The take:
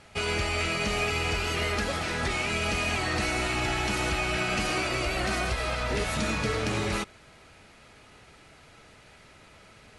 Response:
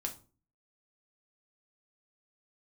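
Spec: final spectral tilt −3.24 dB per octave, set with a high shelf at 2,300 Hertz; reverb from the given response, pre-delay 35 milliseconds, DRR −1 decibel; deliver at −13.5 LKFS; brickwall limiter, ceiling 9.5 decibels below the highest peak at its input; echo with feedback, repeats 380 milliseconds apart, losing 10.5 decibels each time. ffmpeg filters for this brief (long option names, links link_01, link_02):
-filter_complex "[0:a]highshelf=frequency=2300:gain=4,alimiter=level_in=0.5dB:limit=-24dB:level=0:latency=1,volume=-0.5dB,aecho=1:1:380|760|1140:0.299|0.0896|0.0269,asplit=2[link_01][link_02];[1:a]atrim=start_sample=2205,adelay=35[link_03];[link_02][link_03]afir=irnorm=-1:irlink=0,volume=1dB[link_04];[link_01][link_04]amix=inputs=2:normalize=0,volume=14.5dB"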